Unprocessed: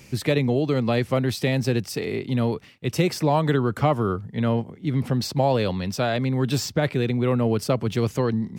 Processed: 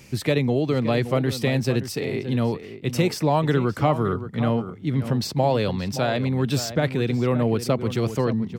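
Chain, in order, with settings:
slap from a distant wall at 98 metres, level −11 dB

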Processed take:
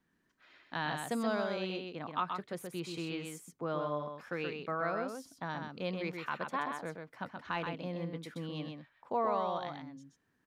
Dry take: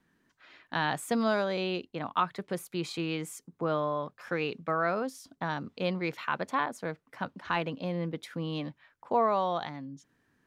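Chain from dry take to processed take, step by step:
single-tap delay 128 ms −5 dB
level −6.5 dB

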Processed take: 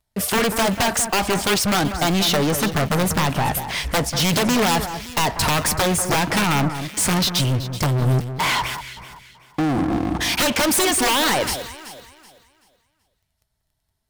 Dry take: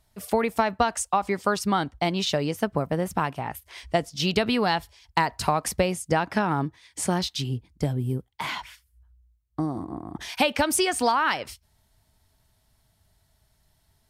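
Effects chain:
wrap-around overflow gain 16.5 dB
leveller curve on the samples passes 5
delay that swaps between a low-pass and a high-pass 190 ms, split 1,900 Hz, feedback 54%, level −9 dB

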